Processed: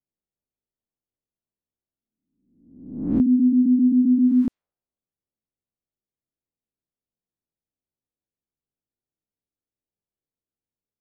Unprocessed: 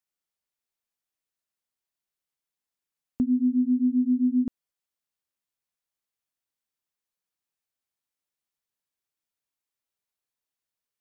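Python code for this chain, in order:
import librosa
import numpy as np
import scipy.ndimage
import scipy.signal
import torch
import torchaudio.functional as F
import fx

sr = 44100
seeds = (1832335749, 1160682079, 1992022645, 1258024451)

y = fx.spec_swells(x, sr, rise_s=0.85)
y = fx.env_lowpass(y, sr, base_hz=400.0, full_db=-20.5)
y = y * 10.0 ** (5.0 / 20.0)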